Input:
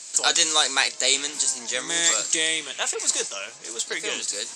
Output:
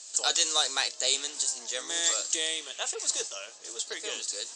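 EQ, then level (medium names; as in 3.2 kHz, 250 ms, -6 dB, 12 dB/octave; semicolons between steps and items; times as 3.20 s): cabinet simulation 410–8200 Hz, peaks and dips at 970 Hz -5 dB, 1.5 kHz -4 dB, 2.2 kHz -10 dB; -4.5 dB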